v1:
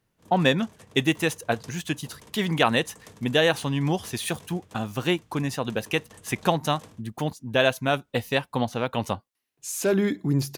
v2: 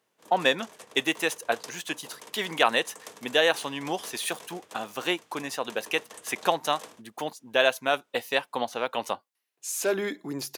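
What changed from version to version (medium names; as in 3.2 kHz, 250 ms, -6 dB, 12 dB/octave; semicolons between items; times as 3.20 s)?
background +6.0 dB; master: add high-pass 440 Hz 12 dB/octave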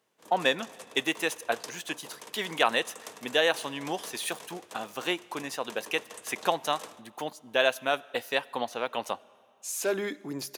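speech -4.0 dB; reverb: on, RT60 2.3 s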